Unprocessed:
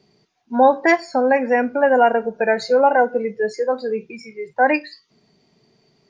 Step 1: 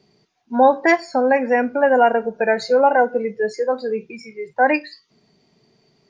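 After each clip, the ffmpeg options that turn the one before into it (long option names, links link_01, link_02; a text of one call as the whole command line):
ffmpeg -i in.wav -af anull out.wav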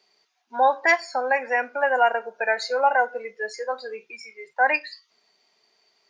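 ffmpeg -i in.wav -af "highpass=860" out.wav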